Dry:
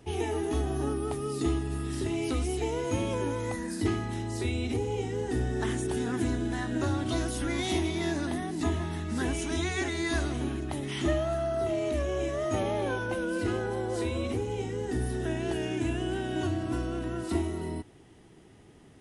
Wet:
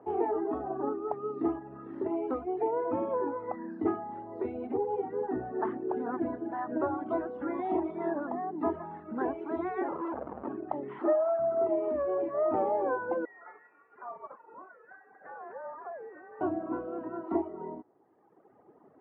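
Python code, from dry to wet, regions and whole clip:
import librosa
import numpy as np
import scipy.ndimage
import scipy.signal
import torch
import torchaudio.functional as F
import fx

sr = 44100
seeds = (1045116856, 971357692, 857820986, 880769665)

y = fx.chain(x, sr, fx.fixed_phaser(hz=370.0, stages=4),
    fx.schmitt(flips_db=-32.0), at=(9.88, 10.48))
y = fx.chain(y, sr, fx.delta_mod(bps=32000, step_db=-36.5),
    fx.highpass(hz=300.0, slope=12),
    fx.resample_bad(factor=6, down='none', up='hold'), at=(10.99, 11.39))
y = fx.chain(y, sr, fx.highpass(hz=1500.0, slope=24),
    fx.freq_invert(carrier_hz=3400), at=(13.25, 16.41))
y = scipy.signal.sosfilt(scipy.signal.butter(4, 1100.0, 'lowpass', fs=sr, output='sos'), y)
y = fx.dereverb_blind(y, sr, rt60_s=1.7)
y = scipy.signal.sosfilt(scipy.signal.bessel(2, 540.0, 'highpass', norm='mag', fs=sr, output='sos'), y)
y = y * librosa.db_to_amplitude(8.5)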